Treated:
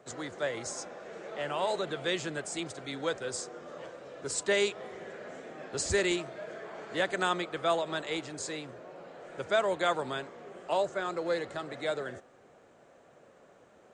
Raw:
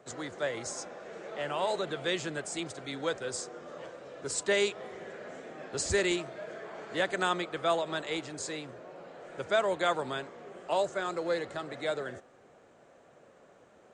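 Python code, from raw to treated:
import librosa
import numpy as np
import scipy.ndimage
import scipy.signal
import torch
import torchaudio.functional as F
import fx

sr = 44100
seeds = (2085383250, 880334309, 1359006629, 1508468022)

y = fx.high_shelf(x, sr, hz=fx.line((10.76, 5000.0), (11.25, 7700.0)), db=-6.5, at=(10.76, 11.25), fade=0.02)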